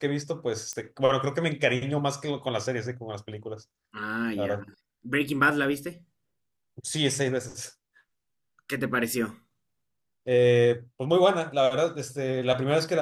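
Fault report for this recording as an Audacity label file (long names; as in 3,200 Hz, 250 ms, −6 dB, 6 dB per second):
0.730000	0.730000	click −19 dBFS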